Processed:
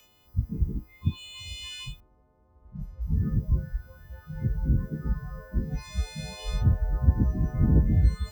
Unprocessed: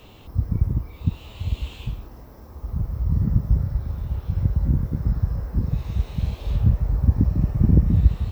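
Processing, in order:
every partial snapped to a pitch grid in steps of 3 semitones
noise reduction from a noise print of the clip's start 17 dB
0:02.00–0:03.17: low-pass that shuts in the quiet parts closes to 940 Hz, open at −28.5 dBFS
level −1.5 dB

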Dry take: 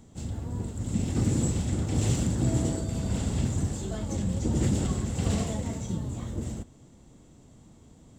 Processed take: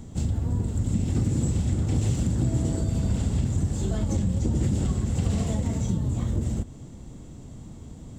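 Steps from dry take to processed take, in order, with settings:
low-shelf EQ 210 Hz +8 dB
downward compressor 4 to 1, threshold −29 dBFS, peak gain reduction 12.5 dB
level +6.5 dB

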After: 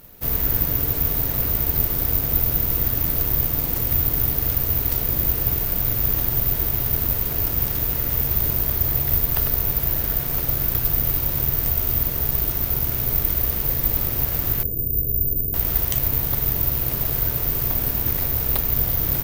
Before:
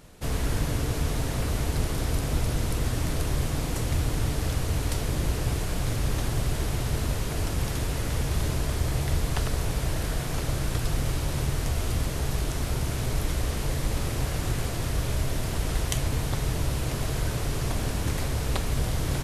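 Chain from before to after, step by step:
0:14.63–0:15.54: elliptic band-stop filter 470–8,600 Hz, stop band 40 dB
bad sample-rate conversion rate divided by 3×, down filtered, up zero stuff

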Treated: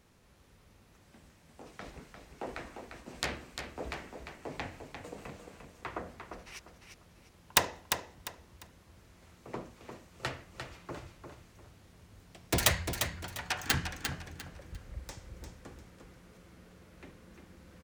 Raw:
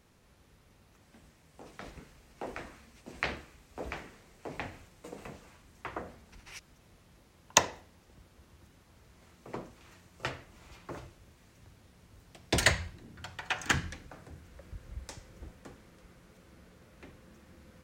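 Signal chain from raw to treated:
phase distortion by the signal itself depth 0.66 ms
repeating echo 349 ms, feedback 28%, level −7 dB

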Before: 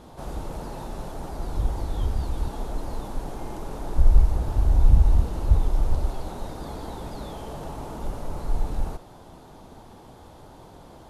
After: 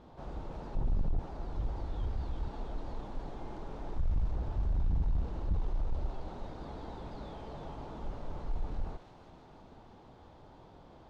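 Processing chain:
0:00.75–0:01.19: spectral tilt −4.5 dB per octave
soft clipping −17 dBFS, distortion −8 dB
high-frequency loss of the air 160 metres
on a send: delay with a high-pass on its return 334 ms, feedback 61%, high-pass 1,800 Hz, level −4.5 dB
on the sum: level −8 dB

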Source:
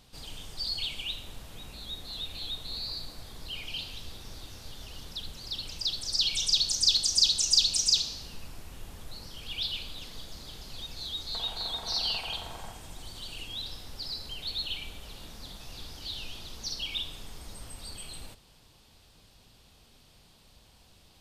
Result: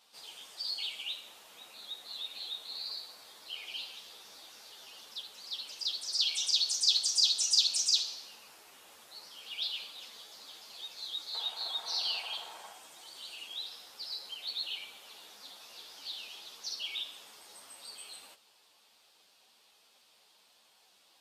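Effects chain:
high-pass filter 570 Hz 12 dB per octave
string-ensemble chorus

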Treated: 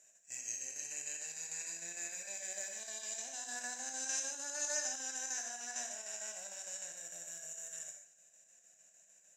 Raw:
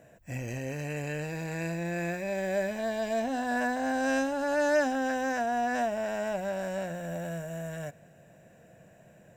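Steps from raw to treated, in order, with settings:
resonant band-pass 6,700 Hz, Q 6.4
square-wave tremolo 6.6 Hz, depth 60%, duty 70%
reverb whose tail is shaped and stops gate 160 ms flat, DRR 3 dB
level +14 dB

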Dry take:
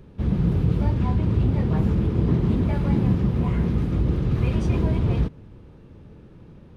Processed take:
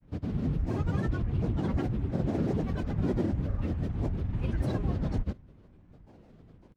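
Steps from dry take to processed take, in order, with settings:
granular cloud, pitch spread up and down by 12 semitones
level −7.5 dB

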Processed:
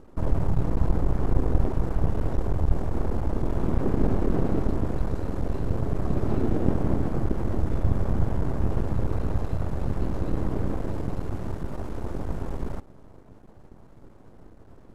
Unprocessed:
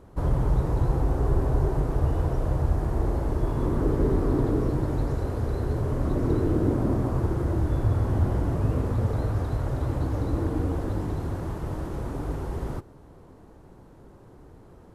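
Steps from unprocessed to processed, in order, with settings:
half-wave rectification
high-shelf EQ 2,200 Hz −2.5 dB
pitch-shifted copies added −7 semitones 0 dB, +4 semitones −12 dB

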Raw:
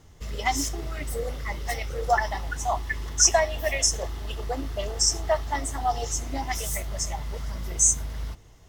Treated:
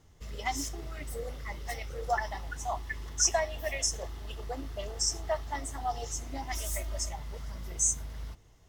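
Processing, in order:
0:06.52–0:07.09: comb filter 3.2 ms, depth 89%
level −7.5 dB

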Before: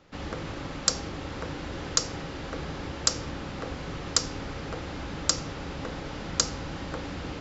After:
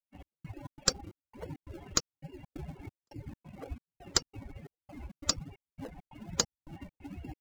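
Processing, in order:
spectral dynamics exaggerated over time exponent 3
reverb reduction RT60 0.64 s
gate pattern "xx..xx.x" 135 BPM −60 dB
in parallel at −7.5 dB: sample-and-hold swept by an LFO 35×, swing 100% 1.2 Hz

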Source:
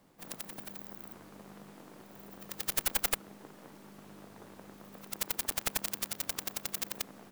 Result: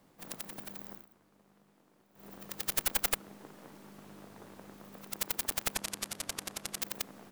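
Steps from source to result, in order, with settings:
0:00.93–0:02.27: duck −15 dB, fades 0.13 s
0:05.75–0:06.82: low-pass filter 12,000 Hz 24 dB per octave

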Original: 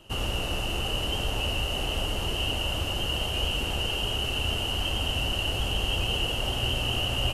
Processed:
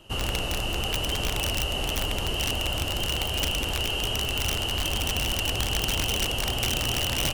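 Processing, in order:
wrap-around overflow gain 19.5 dB
level +1 dB

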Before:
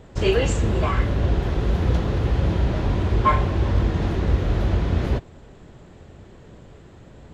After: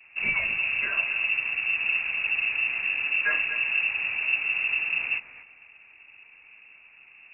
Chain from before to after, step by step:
pitch vibrato 0.56 Hz 24 cents
on a send: feedback echo with a high-pass in the loop 242 ms, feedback 30%, high-pass 420 Hz, level −10.5 dB
on the sum: voice inversion scrambler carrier 2,700 Hz
level −8 dB

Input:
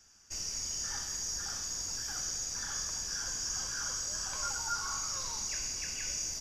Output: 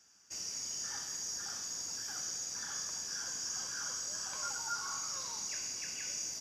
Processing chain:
high-pass filter 150 Hz 12 dB per octave
level −3 dB

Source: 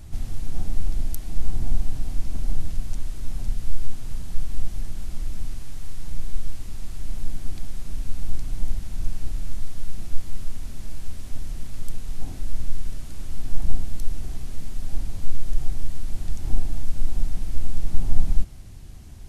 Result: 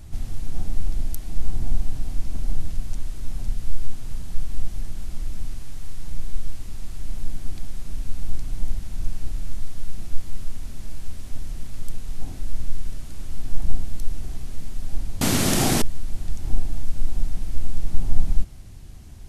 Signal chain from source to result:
0:15.21–0:15.82: every bin compressed towards the loudest bin 10 to 1

